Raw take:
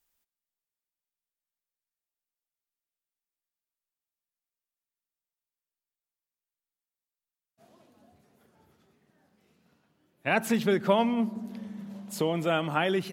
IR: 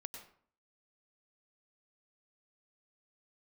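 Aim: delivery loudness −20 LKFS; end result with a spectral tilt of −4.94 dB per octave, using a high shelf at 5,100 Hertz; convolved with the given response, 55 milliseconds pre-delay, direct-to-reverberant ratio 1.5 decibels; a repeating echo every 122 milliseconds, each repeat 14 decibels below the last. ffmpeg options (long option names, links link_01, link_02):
-filter_complex "[0:a]highshelf=frequency=5100:gain=6,aecho=1:1:122|244:0.2|0.0399,asplit=2[link_01][link_02];[1:a]atrim=start_sample=2205,adelay=55[link_03];[link_02][link_03]afir=irnorm=-1:irlink=0,volume=2dB[link_04];[link_01][link_04]amix=inputs=2:normalize=0,volume=5.5dB"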